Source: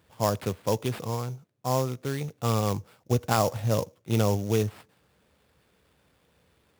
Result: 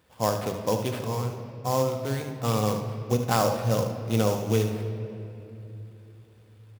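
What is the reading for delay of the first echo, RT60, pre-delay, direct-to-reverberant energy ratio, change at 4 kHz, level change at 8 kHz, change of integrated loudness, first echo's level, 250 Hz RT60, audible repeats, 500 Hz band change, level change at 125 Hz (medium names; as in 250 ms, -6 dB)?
75 ms, 2.9 s, 4 ms, 4.0 dB, +1.5 dB, +1.0 dB, +1.0 dB, -9.5 dB, 3.9 s, 1, +2.0 dB, +0.5 dB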